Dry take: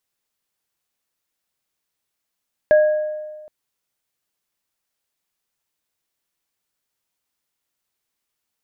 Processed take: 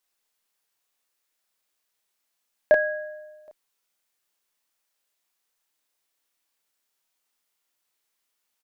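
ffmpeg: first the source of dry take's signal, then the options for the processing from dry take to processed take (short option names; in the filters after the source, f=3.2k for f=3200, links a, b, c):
-f lavfi -i "aevalsrc='0.398*pow(10,-3*t/1.49)*sin(2*PI*611*t)+0.0891*pow(10,-3*t/0.86)*sin(2*PI*1650*t)':d=0.77:s=44100"
-filter_complex "[0:a]equalizer=f=70:w=0.38:g=-14,asplit=2[a][b];[b]adelay=32,volume=-2.5dB[c];[a][c]amix=inputs=2:normalize=0"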